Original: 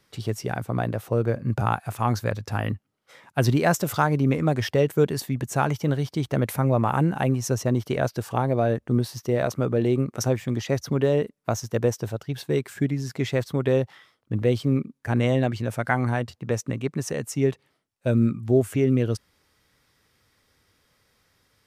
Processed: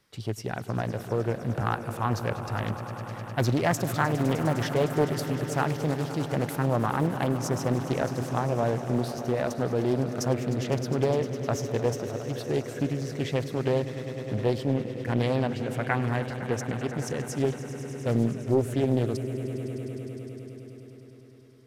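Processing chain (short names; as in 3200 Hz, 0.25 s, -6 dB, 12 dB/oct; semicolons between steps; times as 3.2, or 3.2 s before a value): swelling echo 0.102 s, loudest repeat 5, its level -15 dB; Doppler distortion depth 0.59 ms; gain -4 dB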